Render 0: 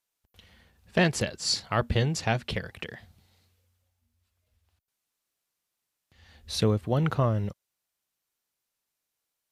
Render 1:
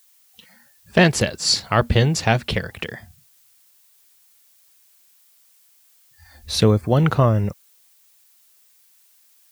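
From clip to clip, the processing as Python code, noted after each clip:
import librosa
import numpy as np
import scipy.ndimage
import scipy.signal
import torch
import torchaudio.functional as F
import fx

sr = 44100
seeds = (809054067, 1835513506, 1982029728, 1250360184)

y = fx.noise_reduce_blind(x, sr, reduce_db=28)
y = fx.dmg_noise_colour(y, sr, seeds[0], colour='blue', level_db=-65.0)
y = y * librosa.db_to_amplitude(8.5)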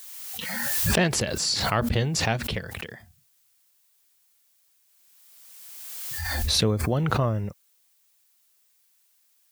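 y = fx.pre_swell(x, sr, db_per_s=25.0)
y = y * librosa.db_to_amplitude(-8.5)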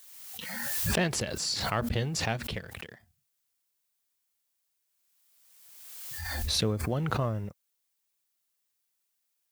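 y = fx.law_mismatch(x, sr, coded='A')
y = y * librosa.db_to_amplitude(-5.0)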